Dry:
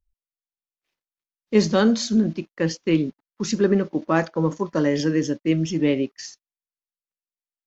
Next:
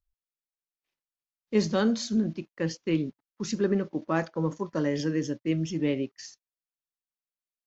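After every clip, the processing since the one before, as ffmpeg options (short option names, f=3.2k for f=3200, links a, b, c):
-af "equalizer=f=120:w=2.4:g=4,volume=-7dB"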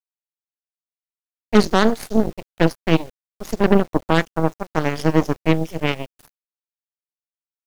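-af "aphaser=in_gain=1:out_gain=1:delay=1.4:decay=0.35:speed=0.76:type=triangular,aeval=exprs='0.282*(cos(1*acos(clip(val(0)/0.282,-1,1)))-cos(1*PI/2))+0.0447*(cos(6*acos(clip(val(0)/0.282,-1,1)))-cos(6*PI/2))+0.0398*(cos(7*acos(clip(val(0)/0.282,-1,1)))-cos(7*PI/2))':c=same,acrusher=bits=8:mix=0:aa=0.000001,volume=8.5dB"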